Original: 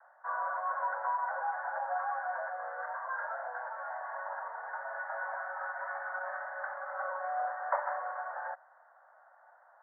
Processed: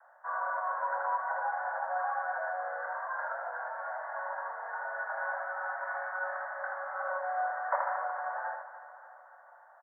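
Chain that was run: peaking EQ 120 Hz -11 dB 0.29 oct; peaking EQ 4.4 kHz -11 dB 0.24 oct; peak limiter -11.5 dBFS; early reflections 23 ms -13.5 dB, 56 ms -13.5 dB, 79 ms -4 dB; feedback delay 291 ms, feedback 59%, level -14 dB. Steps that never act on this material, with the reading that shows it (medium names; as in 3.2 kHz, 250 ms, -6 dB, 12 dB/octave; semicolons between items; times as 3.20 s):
peaking EQ 120 Hz: input has nothing below 450 Hz; peaking EQ 4.4 kHz: input has nothing above 2 kHz; peak limiter -11.5 dBFS: peak at its input -16.0 dBFS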